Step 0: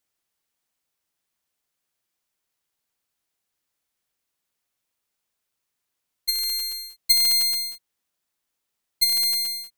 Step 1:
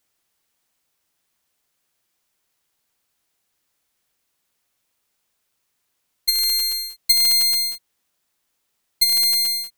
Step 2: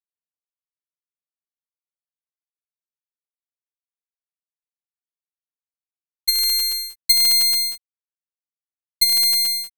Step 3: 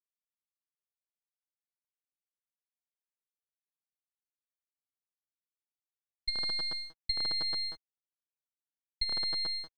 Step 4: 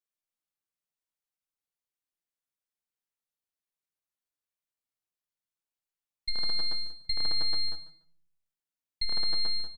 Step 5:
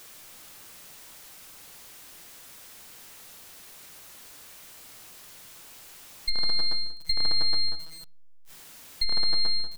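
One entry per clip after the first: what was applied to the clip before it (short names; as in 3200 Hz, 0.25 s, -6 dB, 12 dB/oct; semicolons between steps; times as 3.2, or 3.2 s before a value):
compressor 2:1, threshold -25 dBFS, peak gain reduction 7 dB; gain +7.5 dB
crossover distortion -46 dBFS; gain +1 dB
median filter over 15 samples; compressor, threshold -29 dBFS, peak gain reduction 9 dB; air absorption 230 m; gain +6.5 dB
feedback echo 0.145 s, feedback 20%, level -15 dB; on a send at -8 dB: reverb RT60 0.55 s, pre-delay 6 ms
zero-crossing step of -42.5 dBFS; gain +4 dB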